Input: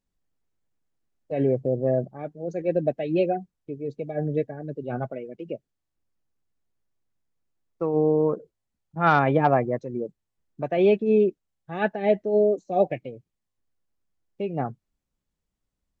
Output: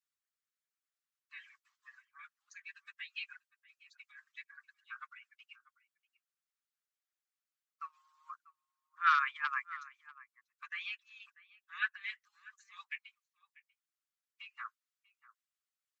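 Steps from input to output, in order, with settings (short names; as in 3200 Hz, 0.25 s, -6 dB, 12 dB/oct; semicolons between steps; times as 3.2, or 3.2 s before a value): steep high-pass 1100 Hz 96 dB/oct; outdoor echo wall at 110 m, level -18 dB; harmonic-percussive split harmonic -14 dB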